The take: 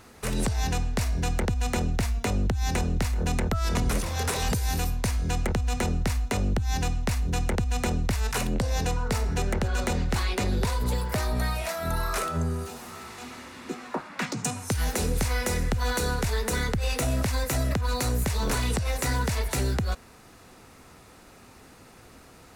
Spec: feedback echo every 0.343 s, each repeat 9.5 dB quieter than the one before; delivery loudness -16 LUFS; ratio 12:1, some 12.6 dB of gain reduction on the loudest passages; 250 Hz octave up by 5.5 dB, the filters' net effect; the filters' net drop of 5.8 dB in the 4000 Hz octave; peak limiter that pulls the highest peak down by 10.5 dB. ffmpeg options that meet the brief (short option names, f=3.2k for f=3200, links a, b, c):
-af "equalizer=f=250:t=o:g=7,equalizer=f=4k:t=o:g=-7.5,acompressor=threshold=-32dB:ratio=12,alimiter=level_in=7dB:limit=-24dB:level=0:latency=1,volume=-7dB,aecho=1:1:343|686|1029|1372:0.335|0.111|0.0365|0.012,volume=24dB"